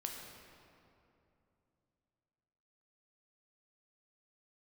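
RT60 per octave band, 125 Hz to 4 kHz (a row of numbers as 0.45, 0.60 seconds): 3.6, 3.4, 3.0, 2.7, 2.1, 1.6 seconds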